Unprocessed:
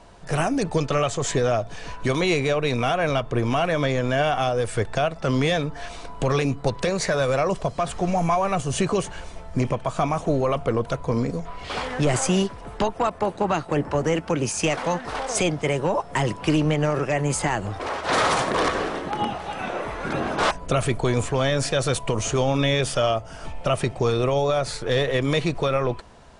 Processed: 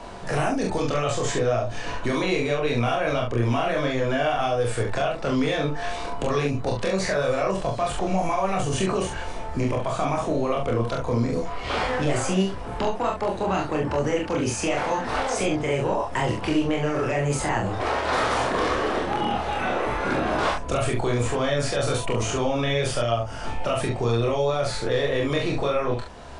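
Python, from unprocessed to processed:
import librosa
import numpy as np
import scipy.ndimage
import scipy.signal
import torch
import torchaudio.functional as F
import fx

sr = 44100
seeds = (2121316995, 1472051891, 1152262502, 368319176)

p1 = fx.peak_eq(x, sr, hz=160.0, db=-12.0, octaves=0.2)
p2 = fx.over_compress(p1, sr, threshold_db=-28.0, ratio=-1.0)
p3 = p1 + (p2 * 10.0 ** (-2.0 / 20.0))
p4 = fx.high_shelf(p3, sr, hz=4800.0, db=-6.0)
p5 = fx.room_early_taps(p4, sr, ms=(26, 42, 69), db=(-3.0, -3.5, -5.5))
p6 = fx.band_squash(p5, sr, depth_pct=40)
y = p6 * 10.0 ** (-7.0 / 20.0)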